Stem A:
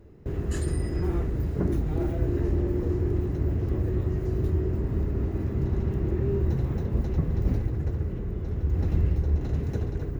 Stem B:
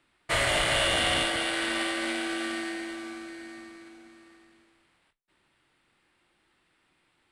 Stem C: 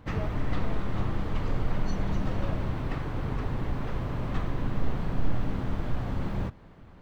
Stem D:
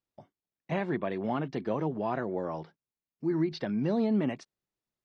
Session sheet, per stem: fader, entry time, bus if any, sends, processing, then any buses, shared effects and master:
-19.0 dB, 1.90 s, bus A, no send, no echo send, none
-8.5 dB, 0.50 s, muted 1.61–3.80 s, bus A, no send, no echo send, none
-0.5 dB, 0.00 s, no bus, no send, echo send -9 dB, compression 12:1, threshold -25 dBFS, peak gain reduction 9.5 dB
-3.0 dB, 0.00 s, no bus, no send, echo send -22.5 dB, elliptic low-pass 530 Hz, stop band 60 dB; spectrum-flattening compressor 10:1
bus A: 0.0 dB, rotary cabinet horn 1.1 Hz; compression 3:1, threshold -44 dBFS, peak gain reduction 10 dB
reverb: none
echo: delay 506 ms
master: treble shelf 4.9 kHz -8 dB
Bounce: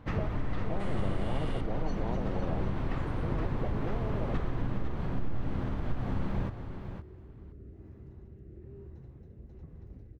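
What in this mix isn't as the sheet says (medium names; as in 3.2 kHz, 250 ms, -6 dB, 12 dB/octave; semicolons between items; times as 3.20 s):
stem A: entry 1.90 s -> 2.45 s; stem B -8.5 dB -> -18.0 dB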